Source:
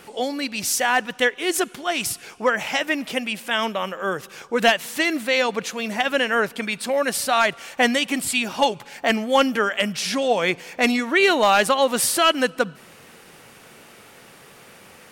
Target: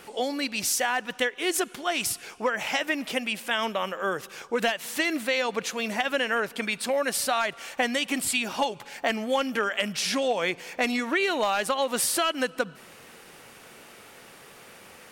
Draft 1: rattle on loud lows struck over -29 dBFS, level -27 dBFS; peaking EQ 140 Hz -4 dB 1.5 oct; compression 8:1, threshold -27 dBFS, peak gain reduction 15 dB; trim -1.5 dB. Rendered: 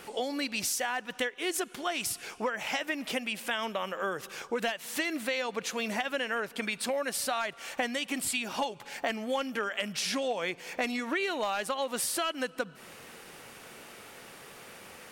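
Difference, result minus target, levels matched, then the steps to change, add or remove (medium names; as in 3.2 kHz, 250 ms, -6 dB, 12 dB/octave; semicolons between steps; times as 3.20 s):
compression: peak gain reduction +6 dB
change: compression 8:1, threshold -20 dBFS, peak gain reduction 9 dB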